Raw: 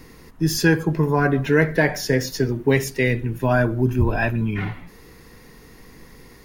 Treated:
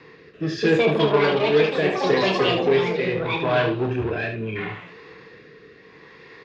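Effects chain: echoes that change speed 0.336 s, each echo +6 st, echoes 3; in parallel at -3.5 dB: wavefolder -19 dBFS; on the sum: speaker cabinet 160–4300 Hz, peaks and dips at 240 Hz -9 dB, 440 Hz +7 dB, 1100 Hz +6 dB, 1700 Hz +7 dB, 2500 Hz +6 dB, 3600 Hz +4 dB; rotary speaker horn 0.75 Hz; dynamic EQ 1600 Hz, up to -7 dB, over -31 dBFS, Q 1.7; on a send: early reflections 27 ms -6 dB, 74 ms -7.5 dB; on the sum: gain -4 dB

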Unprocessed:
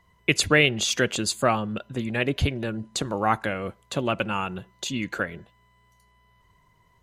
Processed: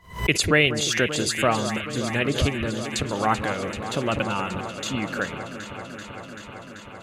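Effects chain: echo with dull and thin repeats by turns 0.193 s, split 1400 Hz, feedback 90%, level -10 dB; backwards sustainer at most 140 dB/s

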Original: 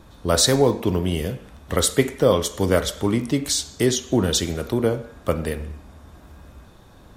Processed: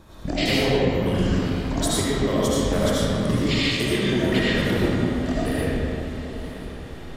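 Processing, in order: trilling pitch shifter -11 st, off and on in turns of 0.227 s; compressor 4:1, threshold -24 dBFS, peak gain reduction 11 dB; diffused feedback echo 1.016 s, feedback 53%, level -15 dB; reverb RT60 2.7 s, pre-delay 40 ms, DRR -8 dB; gain -1.5 dB

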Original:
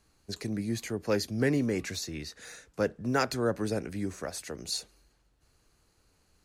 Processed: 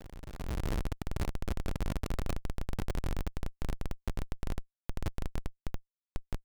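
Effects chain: spectral trails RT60 1.03 s; ten-band EQ 1000 Hz -6 dB, 2000 Hz -4 dB, 4000 Hz -4 dB; diffused feedback echo 0.526 s, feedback 47%, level -16 dB; auto swell 0.694 s; AM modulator 56 Hz, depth 30%; sample leveller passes 1; Paulstretch 43×, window 1.00 s, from 5.88; HPF 190 Hz 12 dB/oct; resonant low shelf 460 Hz -13.5 dB, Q 1.5; Schmitt trigger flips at -50 dBFS; AGC gain up to 16 dB; gain +14.5 dB

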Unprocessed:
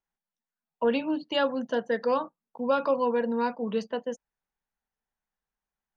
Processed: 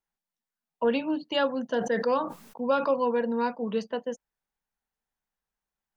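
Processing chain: 1.78–2.88 sustainer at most 82 dB/s

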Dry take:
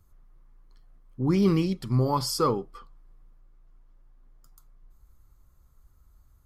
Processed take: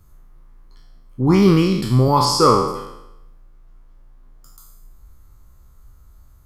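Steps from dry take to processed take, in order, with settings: spectral trails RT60 0.87 s; 2.25–2.68 LPF 8000 Hz 12 dB/oct; gain +8 dB

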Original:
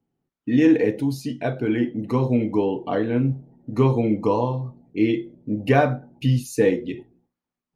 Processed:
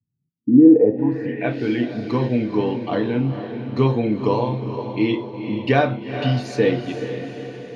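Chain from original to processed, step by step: on a send: diffused feedback echo 0.457 s, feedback 55%, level -9 dB; on the sum: low-pass sweep 110 Hz -> 4200 Hz, 0.12–1.68; HPF 87 Hz

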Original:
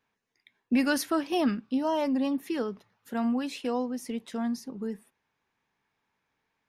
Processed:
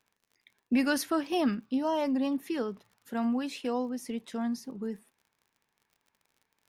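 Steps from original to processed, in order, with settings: crackle 44/s -49 dBFS; gain -1.5 dB

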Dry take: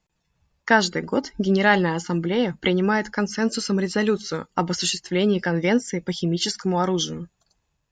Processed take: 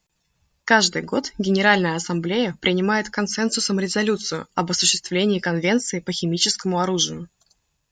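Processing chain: high shelf 3000 Hz +9 dB

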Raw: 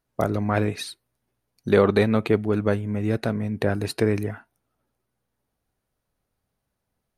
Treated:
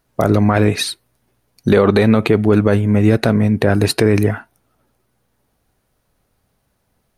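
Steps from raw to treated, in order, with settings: maximiser +14 dB; gain -1 dB

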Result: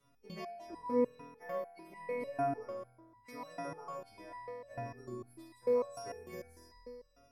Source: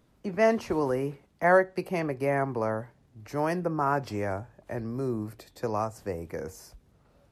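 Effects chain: frequency quantiser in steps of 2 st; compressor, threshold -31 dBFS, peak gain reduction 14.5 dB; on a send: flutter echo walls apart 4.2 m, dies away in 1.3 s; on the sum: stepped resonator 6.7 Hz 140–990 Hz; gain +3.5 dB

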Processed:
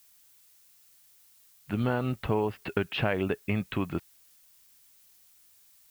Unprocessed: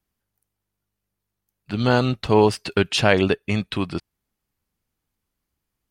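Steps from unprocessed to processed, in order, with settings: LPF 2700 Hz 24 dB/oct; compressor, threshold -21 dBFS, peak gain reduction 10 dB; added noise blue -57 dBFS; gain -3 dB

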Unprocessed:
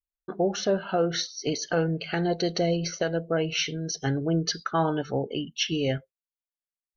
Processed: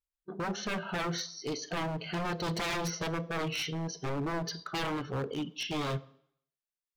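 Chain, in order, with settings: 2.46–3.07 comb 6.2 ms, depth 95%; vibrato 1.9 Hz 28 cents; harmonic-percussive split percussive -11 dB; wavefolder -28 dBFS; on a send: reverb RT60 0.70 s, pre-delay 3 ms, DRR 17 dB

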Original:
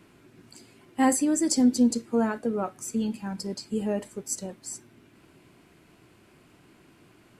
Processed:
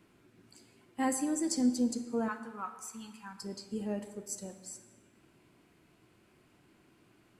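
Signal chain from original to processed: 2.28–3.42 resonant low shelf 770 Hz -10.5 dB, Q 3; plate-style reverb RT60 1.4 s, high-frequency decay 0.7×, DRR 9 dB; gain -8.5 dB

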